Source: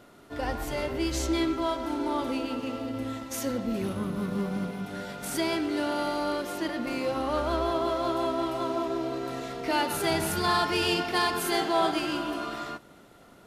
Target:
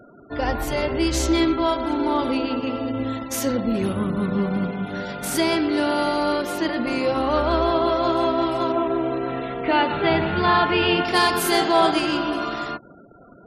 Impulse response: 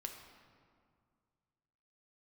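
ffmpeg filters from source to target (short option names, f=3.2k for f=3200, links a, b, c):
-filter_complex "[0:a]asettb=1/sr,asplit=3[a][b][c];[a]atrim=end=8.724[d];[b]atrim=start=8.72:end=11.05,asetpts=PTS-STARTPTS,afade=t=in:d=0.004:c=qsin,afade=t=out:st=2.326:d=0.004:c=qsin,lowpass=f=3.4k:w=0.5412,lowpass=f=3.4k:w=1.3066[e];[c]atrim=start=11.046[f];[d][e]acrossfade=d=0.004:c1=hsin:c2=qsin[g];[g][f]acrossfade=d=0.004:c1=qsin:c2=hsin,afftfilt=real='re*gte(hypot(re,im),0.00447)':imag='im*gte(hypot(re,im),0.00447)':win_size=1024:overlap=0.75,volume=7.5dB"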